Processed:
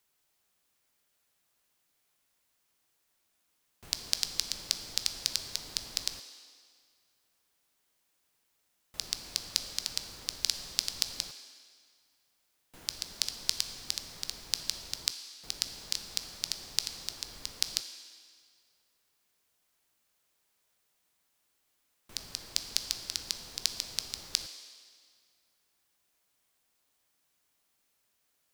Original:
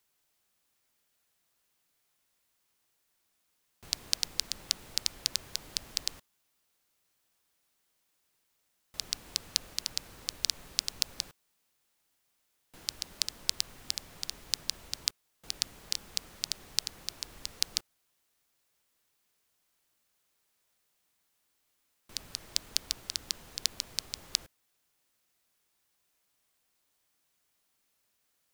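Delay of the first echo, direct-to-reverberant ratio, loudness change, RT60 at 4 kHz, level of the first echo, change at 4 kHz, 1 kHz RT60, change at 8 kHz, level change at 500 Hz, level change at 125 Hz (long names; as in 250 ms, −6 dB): no echo audible, 8.0 dB, +0.5 dB, 1.8 s, no echo audible, +0.5 dB, 1.9 s, +0.5 dB, +0.5 dB, 0.0 dB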